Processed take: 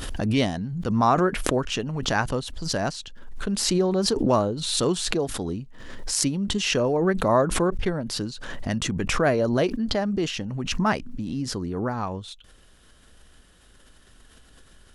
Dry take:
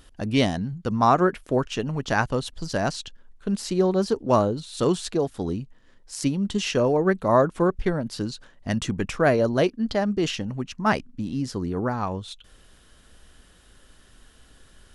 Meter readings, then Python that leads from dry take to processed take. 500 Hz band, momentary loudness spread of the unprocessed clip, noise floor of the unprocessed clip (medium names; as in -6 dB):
-1.5 dB, 11 LU, -55 dBFS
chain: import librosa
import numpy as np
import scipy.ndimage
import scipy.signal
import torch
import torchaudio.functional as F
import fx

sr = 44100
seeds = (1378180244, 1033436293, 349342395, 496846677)

y = fx.pre_swell(x, sr, db_per_s=38.0)
y = F.gain(torch.from_numpy(y), -2.0).numpy()